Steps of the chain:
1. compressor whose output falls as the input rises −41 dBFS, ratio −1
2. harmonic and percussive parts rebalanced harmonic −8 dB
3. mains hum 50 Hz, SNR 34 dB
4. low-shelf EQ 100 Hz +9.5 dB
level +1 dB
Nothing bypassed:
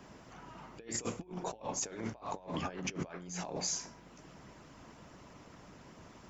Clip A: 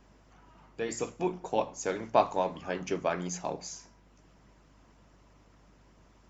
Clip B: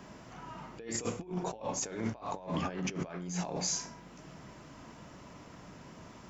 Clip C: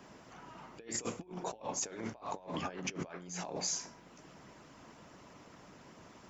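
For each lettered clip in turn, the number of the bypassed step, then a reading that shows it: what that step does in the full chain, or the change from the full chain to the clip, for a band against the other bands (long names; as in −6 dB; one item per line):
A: 1, change in crest factor +3.0 dB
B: 2, 125 Hz band +2.5 dB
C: 4, 125 Hz band −3.0 dB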